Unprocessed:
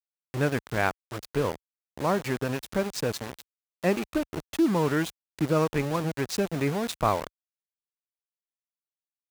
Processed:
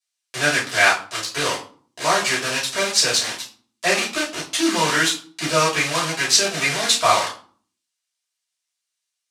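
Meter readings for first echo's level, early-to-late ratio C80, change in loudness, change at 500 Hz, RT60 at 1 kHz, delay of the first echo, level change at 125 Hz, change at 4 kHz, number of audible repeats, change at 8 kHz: no echo, 14.5 dB, +9.0 dB, +3.0 dB, 0.45 s, no echo, -3.0 dB, +19.5 dB, no echo, +19.5 dB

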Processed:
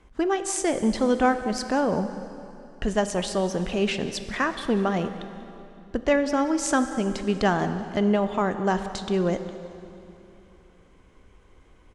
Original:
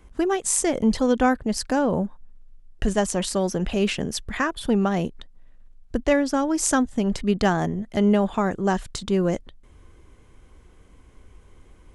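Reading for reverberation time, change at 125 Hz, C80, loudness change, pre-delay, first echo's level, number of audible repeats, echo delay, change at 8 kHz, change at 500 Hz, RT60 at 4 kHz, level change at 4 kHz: 2.9 s, -3.0 dB, 10.5 dB, -2.0 dB, 10 ms, -18.0 dB, 1, 189 ms, -5.5 dB, -1.0 dB, 2.5 s, -1.5 dB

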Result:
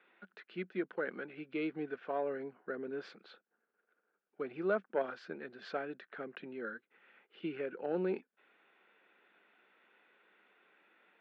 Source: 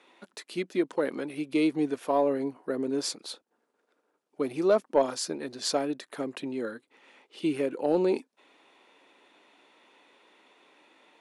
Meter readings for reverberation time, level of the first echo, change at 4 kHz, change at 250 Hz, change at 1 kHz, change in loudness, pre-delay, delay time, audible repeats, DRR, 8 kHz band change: no reverb, no echo, -18.5 dB, -12.0 dB, -10.0 dB, -10.5 dB, no reverb, no echo, no echo, no reverb, under -35 dB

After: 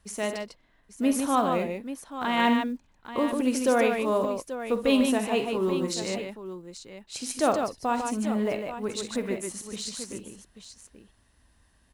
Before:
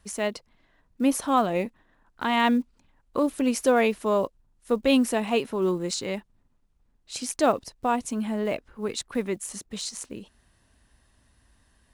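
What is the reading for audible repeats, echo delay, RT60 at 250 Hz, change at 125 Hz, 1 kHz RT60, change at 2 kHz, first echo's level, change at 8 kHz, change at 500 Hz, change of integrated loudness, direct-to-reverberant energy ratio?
3, 47 ms, no reverb, -0.5 dB, no reverb, -0.5 dB, -12.0 dB, -1.0 dB, -1.0 dB, -1.0 dB, no reverb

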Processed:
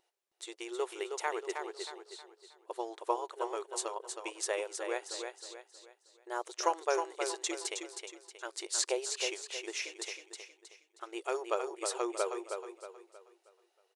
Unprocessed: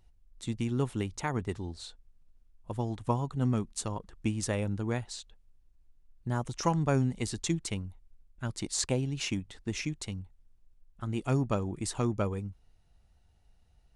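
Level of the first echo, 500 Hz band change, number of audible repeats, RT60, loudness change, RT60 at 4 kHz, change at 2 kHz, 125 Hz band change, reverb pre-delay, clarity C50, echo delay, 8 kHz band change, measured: -6.0 dB, +1.0 dB, 4, no reverb, -3.5 dB, no reverb, +1.0 dB, under -40 dB, no reverb, no reverb, 316 ms, +1.0 dB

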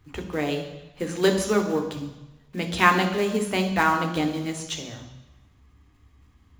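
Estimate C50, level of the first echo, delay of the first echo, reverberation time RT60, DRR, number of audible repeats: 8.5 dB, no echo, no echo, 1.0 s, 4.0 dB, no echo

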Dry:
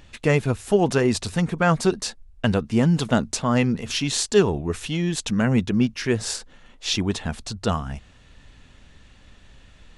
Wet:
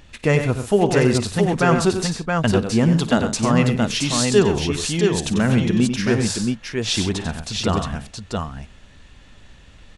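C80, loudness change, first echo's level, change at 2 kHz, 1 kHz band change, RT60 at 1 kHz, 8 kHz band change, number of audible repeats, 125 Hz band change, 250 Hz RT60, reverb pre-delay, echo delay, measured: no reverb, +3.0 dB, -17.5 dB, +3.5 dB, +3.5 dB, no reverb, +3.5 dB, 4, +3.5 dB, no reverb, no reverb, 54 ms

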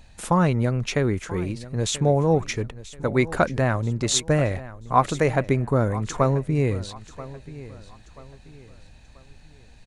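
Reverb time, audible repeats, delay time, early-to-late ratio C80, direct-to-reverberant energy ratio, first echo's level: no reverb, 3, 984 ms, no reverb, no reverb, -17.0 dB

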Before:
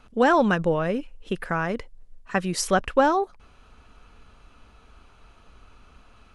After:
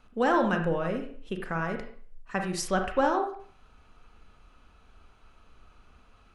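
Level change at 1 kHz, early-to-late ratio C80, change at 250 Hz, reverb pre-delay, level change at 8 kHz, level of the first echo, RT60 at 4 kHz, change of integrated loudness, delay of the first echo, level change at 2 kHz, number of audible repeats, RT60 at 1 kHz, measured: -5.0 dB, 10.5 dB, -4.5 dB, 33 ms, -6.5 dB, no echo, 0.50 s, -5.0 dB, no echo, -5.0 dB, no echo, 0.50 s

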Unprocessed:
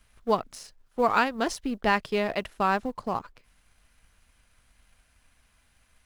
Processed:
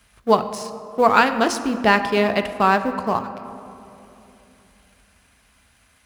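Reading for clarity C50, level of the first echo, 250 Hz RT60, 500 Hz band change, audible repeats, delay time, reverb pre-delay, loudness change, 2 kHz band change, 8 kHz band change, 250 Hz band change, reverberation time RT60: 11.0 dB, no echo, 3.6 s, +8.5 dB, no echo, no echo, 4 ms, +8.0 dB, +8.5 dB, +8.0 dB, +8.5 dB, 3.0 s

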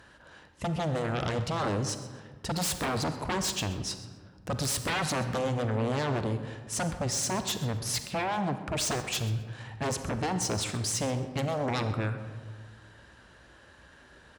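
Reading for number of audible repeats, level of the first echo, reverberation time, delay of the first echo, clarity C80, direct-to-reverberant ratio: 1, -18.0 dB, 1.6 s, 129 ms, 10.5 dB, 8.5 dB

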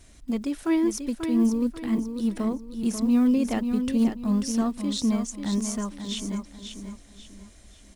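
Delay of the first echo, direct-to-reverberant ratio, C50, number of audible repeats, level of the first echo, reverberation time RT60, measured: 539 ms, no reverb, no reverb, 3, -7.5 dB, no reverb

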